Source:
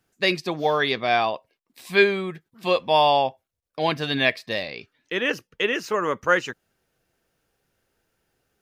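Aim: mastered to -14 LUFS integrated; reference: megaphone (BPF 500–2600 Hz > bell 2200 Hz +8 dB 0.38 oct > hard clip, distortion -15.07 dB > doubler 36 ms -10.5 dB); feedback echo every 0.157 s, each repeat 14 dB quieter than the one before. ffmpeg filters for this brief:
-filter_complex "[0:a]highpass=500,lowpass=2.6k,equalizer=f=2.2k:t=o:w=0.38:g=8,aecho=1:1:157|314:0.2|0.0399,asoftclip=type=hard:threshold=-13.5dB,asplit=2[a][b];[b]adelay=36,volume=-10.5dB[c];[a][c]amix=inputs=2:normalize=0,volume=10dB"

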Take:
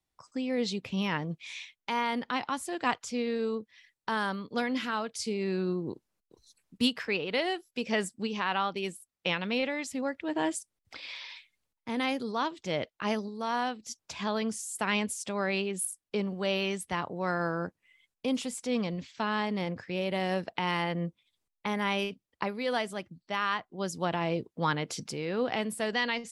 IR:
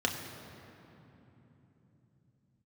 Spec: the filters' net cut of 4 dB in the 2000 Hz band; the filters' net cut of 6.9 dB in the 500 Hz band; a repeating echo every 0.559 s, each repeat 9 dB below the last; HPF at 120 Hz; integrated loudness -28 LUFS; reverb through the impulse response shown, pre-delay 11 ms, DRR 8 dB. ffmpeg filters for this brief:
-filter_complex "[0:a]highpass=120,equalizer=f=500:t=o:g=-8.5,equalizer=f=2k:t=o:g=-4.5,aecho=1:1:559|1118|1677|2236:0.355|0.124|0.0435|0.0152,asplit=2[a][b];[1:a]atrim=start_sample=2205,adelay=11[c];[b][c]afir=irnorm=-1:irlink=0,volume=-16dB[d];[a][d]amix=inputs=2:normalize=0,volume=6dB"

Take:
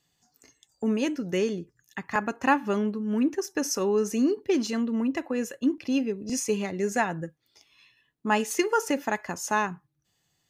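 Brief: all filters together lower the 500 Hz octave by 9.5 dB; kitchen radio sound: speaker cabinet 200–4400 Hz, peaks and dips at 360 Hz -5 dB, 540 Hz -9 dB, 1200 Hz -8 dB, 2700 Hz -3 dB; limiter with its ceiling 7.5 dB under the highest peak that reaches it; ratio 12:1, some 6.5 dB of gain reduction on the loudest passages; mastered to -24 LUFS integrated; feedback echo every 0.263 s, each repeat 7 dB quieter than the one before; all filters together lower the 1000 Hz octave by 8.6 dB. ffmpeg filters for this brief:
-af "equalizer=f=500:t=o:g=-5,equalizer=f=1k:t=o:g=-6,acompressor=threshold=-27dB:ratio=12,alimiter=limit=-24dB:level=0:latency=1,highpass=200,equalizer=f=360:t=q:w=4:g=-5,equalizer=f=540:t=q:w=4:g=-9,equalizer=f=1.2k:t=q:w=4:g=-8,equalizer=f=2.7k:t=q:w=4:g=-3,lowpass=f=4.4k:w=0.5412,lowpass=f=4.4k:w=1.3066,aecho=1:1:263|526|789|1052|1315:0.447|0.201|0.0905|0.0407|0.0183,volume=13dB"

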